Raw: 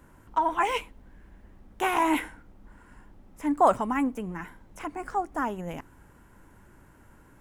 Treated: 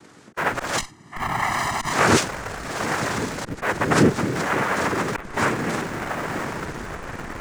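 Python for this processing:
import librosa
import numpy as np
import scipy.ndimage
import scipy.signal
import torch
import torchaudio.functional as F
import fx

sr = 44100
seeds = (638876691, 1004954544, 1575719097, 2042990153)

p1 = fx.freq_compress(x, sr, knee_hz=2100.0, ratio=4.0)
p2 = p1 + fx.echo_diffused(p1, sr, ms=1015, feedback_pct=54, wet_db=-9.5, dry=0)
p3 = fx.auto_swell(p2, sr, attack_ms=318.0)
p4 = fx.noise_vocoder(p3, sr, seeds[0], bands=3)
p5 = fx.schmitt(p4, sr, flips_db=-37.5)
p6 = p4 + (p5 * 10.0 ** (-11.0 / 20.0))
p7 = fx.comb(p6, sr, ms=1.0, depth=0.85, at=(0.78, 1.93))
y = p7 * 10.0 ** (8.5 / 20.0)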